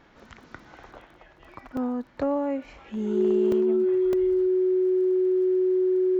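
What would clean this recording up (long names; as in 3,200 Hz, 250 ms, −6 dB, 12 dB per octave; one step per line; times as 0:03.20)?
click removal
notch filter 370 Hz, Q 30
repair the gap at 0:01.77/0:03.52/0:04.13, 2.2 ms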